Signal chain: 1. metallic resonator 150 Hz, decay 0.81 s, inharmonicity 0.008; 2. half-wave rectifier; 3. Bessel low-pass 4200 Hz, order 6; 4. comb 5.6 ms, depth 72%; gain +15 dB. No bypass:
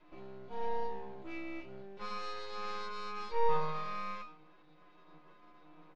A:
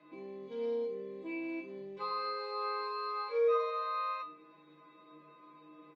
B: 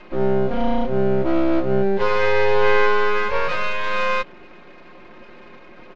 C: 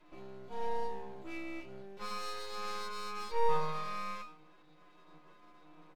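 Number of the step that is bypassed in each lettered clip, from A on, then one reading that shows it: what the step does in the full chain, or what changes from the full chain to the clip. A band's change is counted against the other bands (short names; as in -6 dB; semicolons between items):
2, distortion 0 dB; 1, 1 kHz band -7.5 dB; 3, 4 kHz band +3.0 dB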